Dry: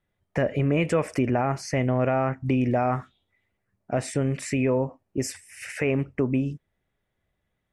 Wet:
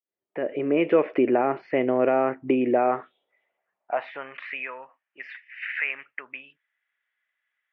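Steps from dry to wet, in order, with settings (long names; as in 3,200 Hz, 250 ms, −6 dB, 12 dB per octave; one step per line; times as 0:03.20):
fade in at the beginning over 0.95 s
high-pass filter sweep 350 Hz → 1,700 Hz, 0:02.73–0:04.90
Butterworth low-pass 3,400 Hz 48 dB per octave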